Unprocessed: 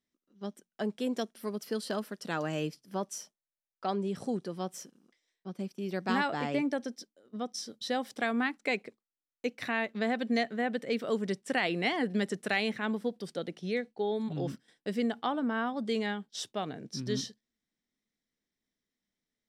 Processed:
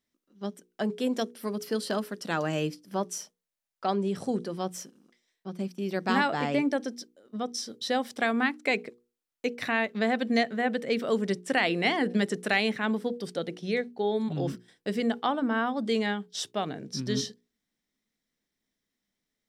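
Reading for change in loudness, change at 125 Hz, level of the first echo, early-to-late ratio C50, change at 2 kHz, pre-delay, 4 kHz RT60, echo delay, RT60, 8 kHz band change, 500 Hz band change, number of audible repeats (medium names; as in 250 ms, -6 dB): +4.0 dB, +4.0 dB, no echo, no reverb, +4.5 dB, no reverb, no reverb, no echo, no reverb, +4.5 dB, +4.0 dB, no echo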